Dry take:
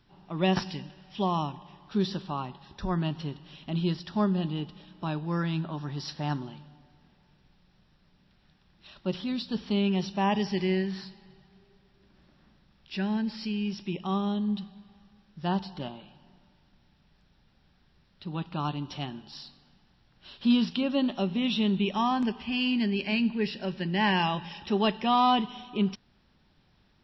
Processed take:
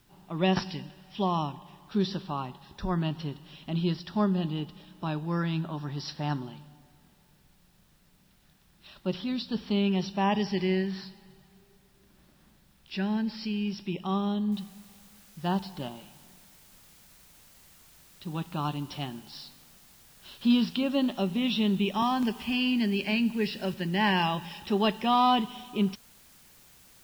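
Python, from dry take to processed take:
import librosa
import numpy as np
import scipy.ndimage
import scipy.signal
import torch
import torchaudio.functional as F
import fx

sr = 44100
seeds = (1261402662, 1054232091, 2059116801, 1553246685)

y = fx.noise_floor_step(x, sr, seeds[0], at_s=14.52, before_db=-70, after_db=-57, tilt_db=0.0)
y = fx.band_squash(y, sr, depth_pct=40, at=(22.02, 23.74))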